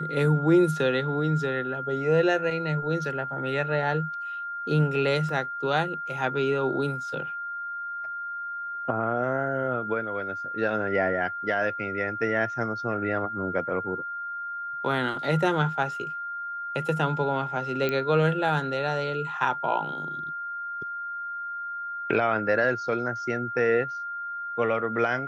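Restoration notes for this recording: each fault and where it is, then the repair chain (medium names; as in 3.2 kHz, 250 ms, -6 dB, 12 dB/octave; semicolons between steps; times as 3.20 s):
whine 1.4 kHz -31 dBFS
5.29 s: dropout 2 ms
17.89 s: pop -14 dBFS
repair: de-click; band-stop 1.4 kHz, Q 30; interpolate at 5.29 s, 2 ms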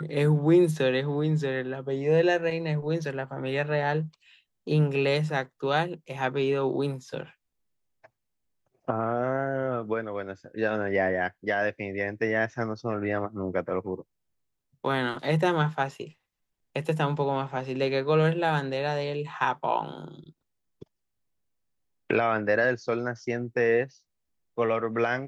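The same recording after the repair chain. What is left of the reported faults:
nothing left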